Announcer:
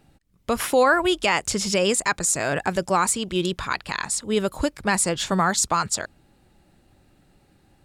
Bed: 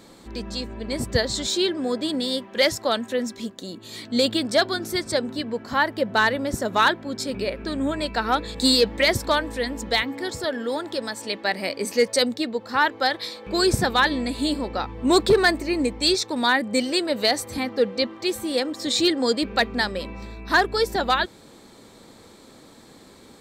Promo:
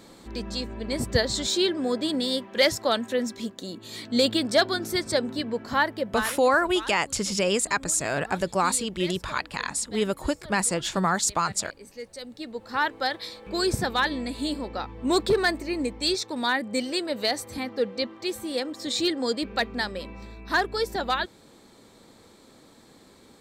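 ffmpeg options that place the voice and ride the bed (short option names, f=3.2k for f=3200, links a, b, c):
-filter_complex "[0:a]adelay=5650,volume=-3dB[a];[1:a]volume=13.5dB,afade=t=out:st=5.73:d=0.68:silence=0.11885,afade=t=in:st=12.23:d=0.51:silence=0.188365[b];[a][b]amix=inputs=2:normalize=0"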